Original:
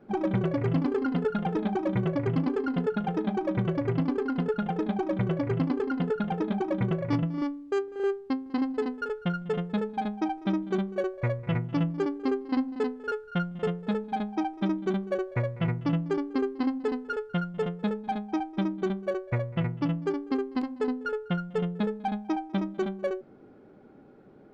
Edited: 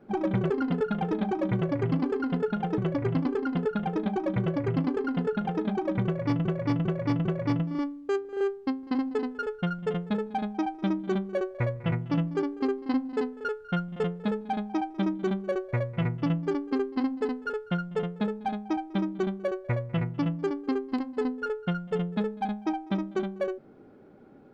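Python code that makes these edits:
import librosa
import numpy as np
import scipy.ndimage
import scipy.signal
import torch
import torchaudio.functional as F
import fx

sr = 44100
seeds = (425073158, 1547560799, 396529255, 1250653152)

y = fx.edit(x, sr, fx.cut(start_s=0.5, length_s=0.44),
    fx.cut(start_s=3.22, length_s=0.39),
    fx.repeat(start_s=6.88, length_s=0.4, count=4), tone=tone)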